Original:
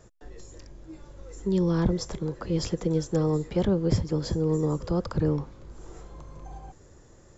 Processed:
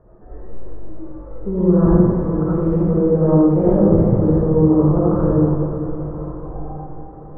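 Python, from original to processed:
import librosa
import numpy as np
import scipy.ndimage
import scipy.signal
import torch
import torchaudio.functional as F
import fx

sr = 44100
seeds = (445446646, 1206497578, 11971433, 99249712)

y = scipy.signal.sosfilt(scipy.signal.butter(4, 1200.0, 'lowpass', fs=sr, output='sos'), x)
y = fx.echo_diffused(y, sr, ms=470, feedback_pct=56, wet_db=-10.5)
y = fx.rev_freeverb(y, sr, rt60_s=1.4, hf_ratio=1.0, predelay_ms=30, drr_db=-9.5)
y = y * 10.0 ** (2.0 / 20.0)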